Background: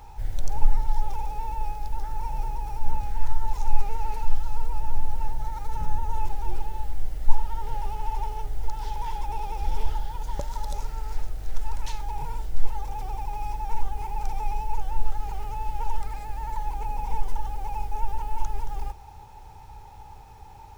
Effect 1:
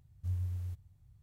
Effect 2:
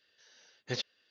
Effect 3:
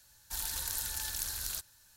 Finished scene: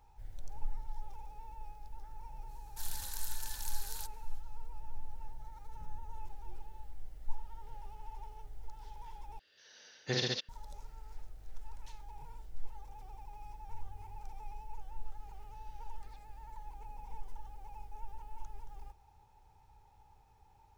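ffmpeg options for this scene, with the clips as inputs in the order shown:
-filter_complex "[2:a]asplit=2[a][b];[0:a]volume=-18dB[c];[a]aecho=1:1:46|76|134|199:0.668|0.531|0.708|0.631[d];[1:a]acompressor=threshold=-45dB:ratio=6:attack=3.2:release=140:knee=1:detection=peak[e];[b]acompressor=threshold=-54dB:ratio=6:attack=3.2:release=140:knee=1:detection=peak[f];[c]asplit=2[g][h];[g]atrim=end=9.394[i];[d]atrim=end=1.1[j];[h]atrim=start=10.486[k];[3:a]atrim=end=1.96,asetpts=PTS-STARTPTS,volume=-7.5dB,afade=t=in:d=0.05,afade=t=out:st=1.91:d=0.05,adelay=2460[l];[e]atrim=end=1.22,asetpts=PTS-STARTPTS,volume=-10dB,afade=t=in:d=0.004:c=hsin,afade=t=out:st=1.216:d=0.004:c=hsin,adelay=13450[m];[f]atrim=end=1.1,asetpts=PTS-STARTPTS,volume=-13dB,afade=t=in:d=0.004:c=hsin,afade=t=out:st=1.096:d=0.004:c=hsin,adelay=15350[n];[i][j]acrossfade=d=0.004:c1=hsin:c2=hsin[o];[o][k]acrossfade=d=0.004:c1=hsin:c2=hsin[p];[p][l][m][n]amix=inputs=4:normalize=0"

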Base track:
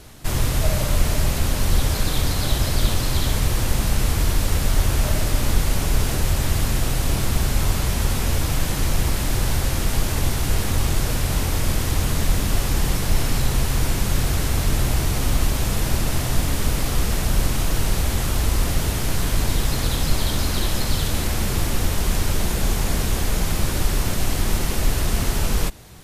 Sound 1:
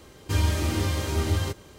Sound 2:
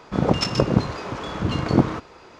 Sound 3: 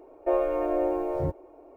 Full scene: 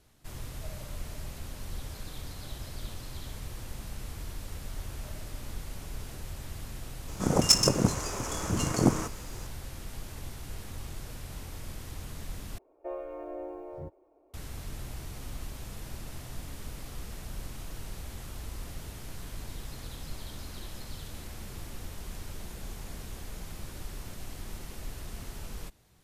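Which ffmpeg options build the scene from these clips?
-filter_complex "[0:a]volume=-20dB[a];[2:a]aexciter=amount=10.6:drive=8.3:freq=6k[b];[a]asplit=2[c][d];[c]atrim=end=12.584[e];[3:a]atrim=end=1.76,asetpts=PTS-STARTPTS,volume=-13.5dB[f];[d]atrim=start=14.336[g];[b]atrim=end=2.39,asetpts=PTS-STARTPTS,volume=-6dB,afade=t=in:d=0.004:c=hsin,afade=t=out:st=2.386:d=0.004:c=hsin,adelay=7080[h];[e][f]acrossfade=d=0.004:c1=hsin:c2=hsin[i];[i][g]acrossfade=d=0.004:c1=hsin:c2=hsin[j];[j][h]amix=inputs=2:normalize=0"

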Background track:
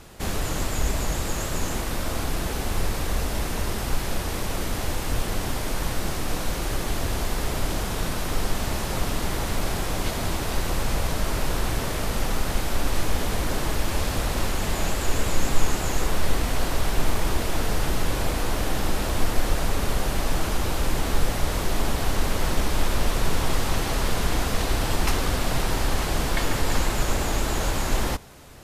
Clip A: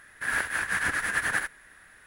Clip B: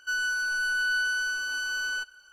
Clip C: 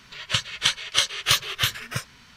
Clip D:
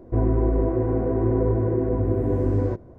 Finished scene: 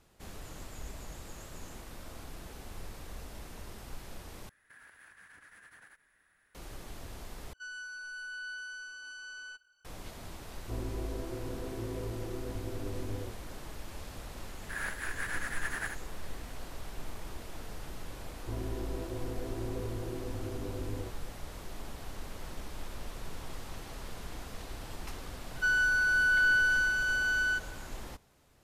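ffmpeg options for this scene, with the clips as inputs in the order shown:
-filter_complex "[1:a]asplit=2[a][b];[2:a]asplit=2[c][d];[4:a]asplit=2[e][f];[0:a]volume=-19dB[g];[a]acompressor=threshold=-37dB:ratio=6:attack=3.2:release=140:knee=1:detection=peak[h];[c]aresample=22050,aresample=44100[i];[d]equalizer=f=1.7k:w=2.8:g=14[j];[g]asplit=3[k][l][m];[k]atrim=end=4.494[n];[h]atrim=end=2.06,asetpts=PTS-STARTPTS,volume=-16.5dB[o];[l]atrim=start=6.546:end=7.534[p];[i]atrim=end=2.32,asetpts=PTS-STARTPTS,volume=-15dB[q];[m]atrim=start=9.846[r];[e]atrim=end=2.98,asetpts=PTS-STARTPTS,volume=-17.5dB,afade=t=in:d=0.004:c=hsin,afade=t=out:st=2.976:d=0.004:c=hsin,adelay=10560[s];[b]atrim=end=2.06,asetpts=PTS-STARTPTS,volume=-10dB,afade=t=in:d=0.004:c=hsin,afade=t=out:st=2.056:d=0.004:c=hsin,adelay=14480[t];[f]atrim=end=2.98,asetpts=PTS-STARTPTS,volume=-17dB,afade=t=in:d=0.004:c=hsin,afade=t=out:st=2.976:d=0.004:c=hsin,adelay=18350[u];[j]atrim=end=2.32,asetpts=PTS-STARTPTS,volume=-7dB,afade=t=in:d=0.004:c=hsin,afade=t=out:st=2.316:d=0.004:c=hsin,adelay=25550[v];[n][o]acrossfade=d=0.004:c1=hsin:c2=hsin[w];[w][p]acrossfade=d=0.004:c1=hsin:c2=hsin[x];[x][q]acrossfade=d=0.004:c1=hsin:c2=hsin[y];[y][r]acrossfade=d=0.004:c1=hsin:c2=hsin[z];[z][s][t][u][v]amix=inputs=5:normalize=0"

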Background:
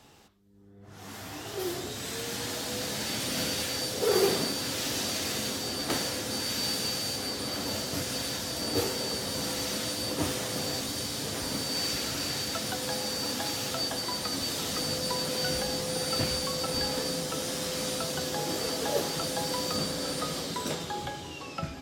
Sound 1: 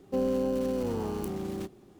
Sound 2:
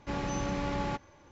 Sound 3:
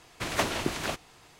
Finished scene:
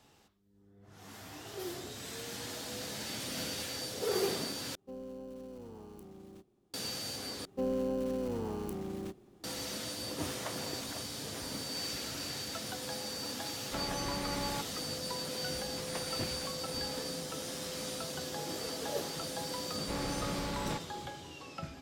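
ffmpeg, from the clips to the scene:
-filter_complex "[1:a]asplit=2[a][b];[3:a]asplit=2[c][d];[2:a]asplit=2[e][f];[0:a]volume=-7.5dB[g];[a]equalizer=f=1.9k:t=o:w=0.77:g=-3[h];[c]bandpass=f=900:t=q:w=0.56:csg=0[i];[e]lowshelf=f=450:g=-5[j];[f]asoftclip=type=hard:threshold=-34dB[k];[g]asplit=3[l][m][n];[l]atrim=end=4.754[o];[h]atrim=end=1.99,asetpts=PTS-STARTPTS,volume=-17dB[p];[m]atrim=start=6.736:end=7.454[q];[b]atrim=end=1.99,asetpts=PTS-STARTPTS,volume=-5dB[r];[n]atrim=start=9.436[s];[i]atrim=end=1.39,asetpts=PTS-STARTPTS,volume=-14dB,afade=t=in:d=0.004:c=hsin,afade=t=out:st=1.386:d=0.004:c=hsin,adelay=10070[t];[j]atrim=end=1.31,asetpts=PTS-STARTPTS,volume=-2.5dB,afade=t=in:d=0.004:c=hsin,afade=t=out:st=1.306:d=0.004:c=hsin,adelay=13650[u];[d]atrim=end=1.39,asetpts=PTS-STARTPTS,volume=-16.5dB,afade=t=in:d=0.004:c=hsin,afade=t=out:st=1.386:d=0.004:c=hsin,adelay=686196S[v];[k]atrim=end=1.31,asetpts=PTS-STARTPTS,volume=-1dB,afade=t=in:d=0.004:c=hsin,afade=t=out:st=1.306:d=0.004:c=hsin,adelay=19810[w];[o][p]acrossfade=d=0.004:c1=hsin:c2=hsin[x];[x][q]acrossfade=d=0.004:c1=hsin:c2=hsin[y];[y][r]acrossfade=d=0.004:c1=hsin:c2=hsin[z];[z][s]acrossfade=d=0.004:c1=hsin:c2=hsin[aa];[aa][t][u][v][w]amix=inputs=5:normalize=0"

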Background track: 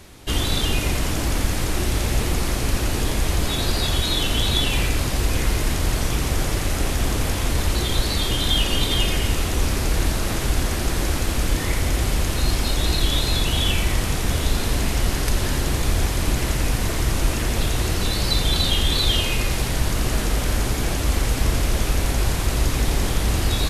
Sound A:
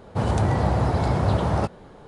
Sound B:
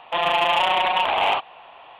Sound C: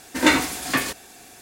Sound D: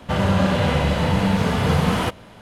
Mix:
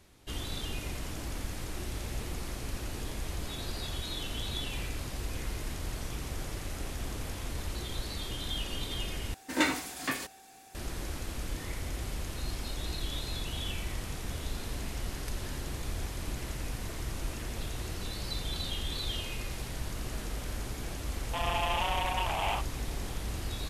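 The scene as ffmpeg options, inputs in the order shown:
-filter_complex "[0:a]volume=-15.5dB[a];[3:a]aeval=exprs='val(0)+0.00562*sin(2*PI*770*n/s)':c=same[b];[a]asplit=2[c][d];[c]atrim=end=9.344[e];[b]atrim=end=1.41,asetpts=PTS-STARTPTS,volume=-10.5dB[f];[d]atrim=start=10.746[g];[2:a]atrim=end=1.99,asetpts=PTS-STARTPTS,volume=-12dB,afade=t=in:d=0.004:c=hsin,afade=t=out:st=1.986:d=0.004:c=hsin,adelay=21210[h];[e][f]acrossfade=d=0.004:c1=hsin:c2=hsin[i];[i][g]acrossfade=d=0.004:c1=hsin:c2=hsin[j];[j][h]amix=inputs=2:normalize=0"

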